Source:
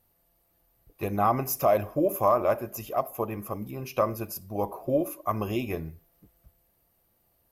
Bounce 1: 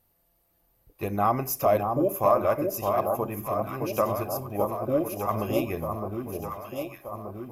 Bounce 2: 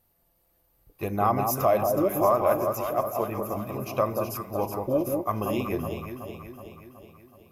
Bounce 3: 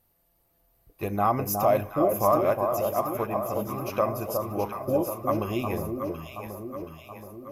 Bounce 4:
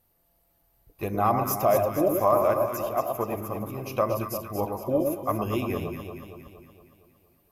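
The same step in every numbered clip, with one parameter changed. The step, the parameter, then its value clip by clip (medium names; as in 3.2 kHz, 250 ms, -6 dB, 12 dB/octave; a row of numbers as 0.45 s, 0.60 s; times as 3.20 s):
echo whose repeats swap between lows and highs, time: 614 ms, 186 ms, 363 ms, 116 ms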